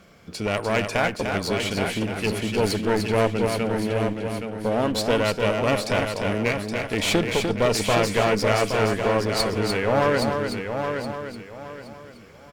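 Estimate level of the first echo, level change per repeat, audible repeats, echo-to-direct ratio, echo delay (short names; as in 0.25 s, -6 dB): -5.5 dB, no steady repeat, 7, -2.5 dB, 0.298 s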